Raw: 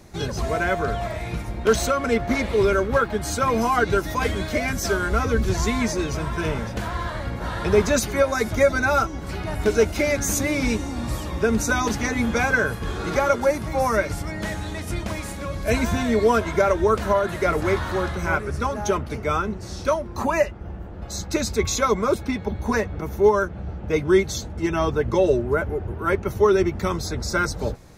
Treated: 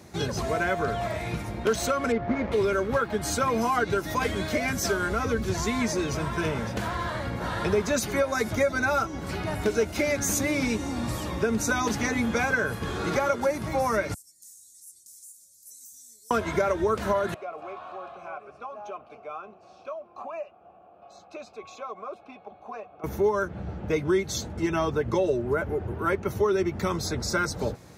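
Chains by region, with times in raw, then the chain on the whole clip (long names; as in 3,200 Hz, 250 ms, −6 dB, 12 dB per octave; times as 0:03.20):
0:02.12–0:02.52: running median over 15 samples + low-pass filter 2,600 Hz
0:14.14–0:16.31: inverse Chebyshev high-pass filter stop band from 2,900 Hz, stop band 50 dB + downward compressor 3 to 1, threshold −44 dBFS
0:17.34–0:23.04: formant filter a + downward compressor 2 to 1, threshold −35 dBFS
whole clip: downward compressor 2.5 to 1, threshold −23 dBFS; high-pass filter 89 Hz 12 dB per octave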